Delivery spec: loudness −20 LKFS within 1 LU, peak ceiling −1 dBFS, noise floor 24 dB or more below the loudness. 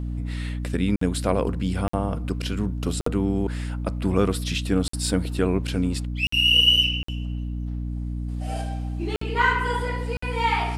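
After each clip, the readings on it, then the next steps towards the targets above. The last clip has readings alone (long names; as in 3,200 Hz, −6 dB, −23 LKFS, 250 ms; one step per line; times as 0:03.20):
number of dropouts 8; longest dropout 54 ms; mains hum 60 Hz; hum harmonics up to 300 Hz; level of the hum −27 dBFS; integrated loudness −24.0 LKFS; sample peak −6.5 dBFS; target loudness −20.0 LKFS
→ repair the gap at 0:00.96/0:01.88/0:03.01/0:04.88/0:06.27/0:07.03/0:09.16/0:10.17, 54 ms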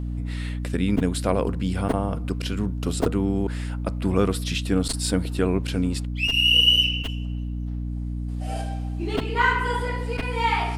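number of dropouts 0; mains hum 60 Hz; hum harmonics up to 300 Hz; level of the hum −27 dBFS
→ mains-hum notches 60/120/180/240/300 Hz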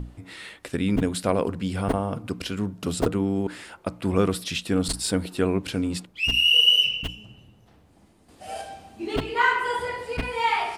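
mains hum none found; integrated loudness −23.5 LKFS; sample peak −7.5 dBFS; target loudness −20.0 LKFS
→ level +3.5 dB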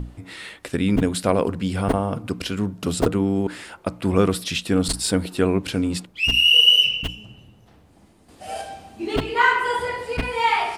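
integrated loudness −20.0 LKFS; sample peak −4.0 dBFS; background noise floor −53 dBFS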